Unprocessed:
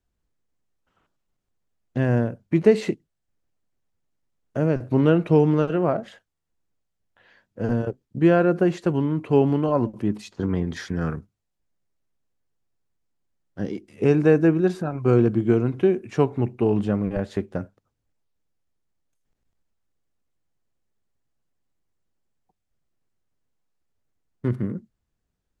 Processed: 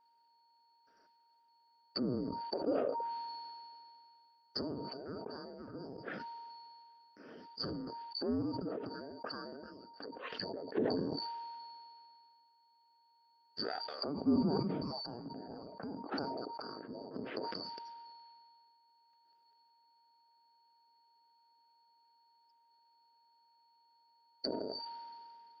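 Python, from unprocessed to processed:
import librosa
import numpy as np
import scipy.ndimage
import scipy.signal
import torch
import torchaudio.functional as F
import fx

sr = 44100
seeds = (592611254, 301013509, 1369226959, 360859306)

y = fx.band_shuffle(x, sr, order='2341')
y = fx.cabinet(y, sr, low_hz=270.0, low_slope=12, high_hz=3400.0, hz=(270.0, 440.0, 640.0, 1000.0, 1500.0, 2200.0), db=(5, 6, 4, -8, 5, -6))
y = fx.env_lowpass_down(y, sr, base_hz=410.0, full_db=-31.5)
y = y + 10.0 ** (-72.0 / 20.0) * np.sin(2.0 * np.pi * 930.0 * np.arange(len(y)) / sr)
y = fx.sustainer(y, sr, db_per_s=23.0)
y = F.gain(torch.from_numpy(y), 4.0).numpy()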